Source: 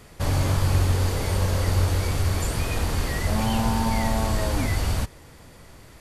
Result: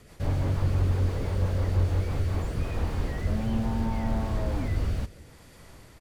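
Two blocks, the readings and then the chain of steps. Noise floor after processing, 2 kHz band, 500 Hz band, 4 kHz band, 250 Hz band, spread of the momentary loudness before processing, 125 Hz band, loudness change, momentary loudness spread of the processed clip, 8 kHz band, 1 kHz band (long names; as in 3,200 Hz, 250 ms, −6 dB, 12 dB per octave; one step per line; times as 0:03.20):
−52 dBFS, −10.0 dB, −5.5 dB, −13.5 dB, −3.5 dB, 4 LU, −3.5 dB, −4.0 dB, 5 LU, −17.0 dB, −9.5 dB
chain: rotating-speaker cabinet horn 6 Hz, later 0.7 Hz, at 0:01.92
slap from a distant wall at 30 metres, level −20 dB
slew-rate limiting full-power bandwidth 22 Hz
level −2 dB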